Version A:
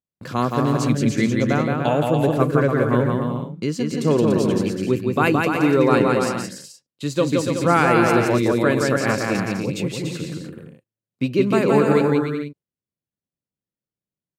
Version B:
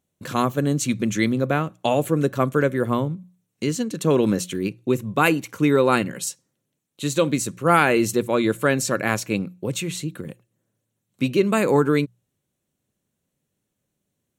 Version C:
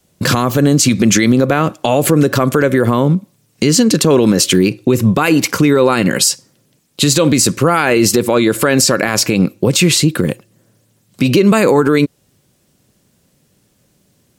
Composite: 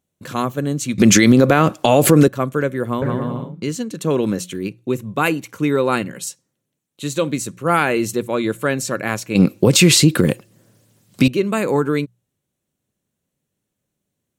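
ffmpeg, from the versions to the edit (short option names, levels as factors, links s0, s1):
-filter_complex "[2:a]asplit=2[s0][s1];[1:a]asplit=4[s2][s3][s4][s5];[s2]atrim=end=0.982[s6];[s0]atrim=start=0.978:end=2.282[s7];[s3]atrim=start=2.278:end=3.022[s8];[0:a]atrim=start=3.018:end=3.642[s9];[s4]atrim=start=3.638:end=9.352[s10];[s1]atrim=start=9.348:end=11.282[s11];[s5]atrim=start=11.278[s12];[s6][s7]acrossfade=d=0.004:c1=hsin:c2=hsin[s13];[s13][s8]acrossfade=d=0.004:c1=hsin:c2=hsin[s14];[s14][s9]acrossfade=d=0.004:c1=hsin:c2=hsin[s15];[s15][s10]acrossfade=d=0.004:c1=hsin:c2=hsin[s16];[s16][s11]acrossfade=d=0.004:c1=hsin:c2=hsin[s17];[s17][s12]acrossfade=d=0.004:c1=hsin:c2=hsin"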